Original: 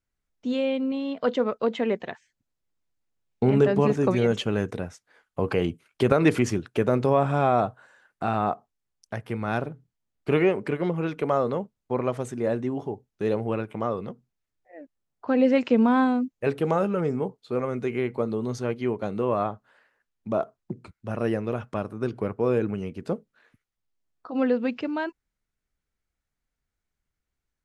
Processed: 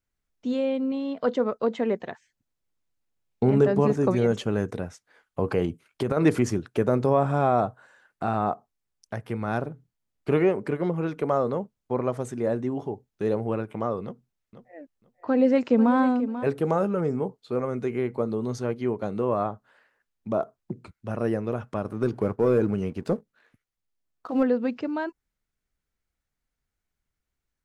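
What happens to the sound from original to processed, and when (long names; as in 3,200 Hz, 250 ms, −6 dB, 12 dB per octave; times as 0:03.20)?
0:05.65–0:06.17: downward compressor 3 to 1, threshold −22 dBFS
0:14.04–0:16.44: repeating echo 489 ms, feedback 18%, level −12 dB
0:21.85–0:24.43: leveller curve on the samples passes 1
whole clip: dynamic equaliser 2,800 Hz, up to −7 dB, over −47 dBFS, Q 1.2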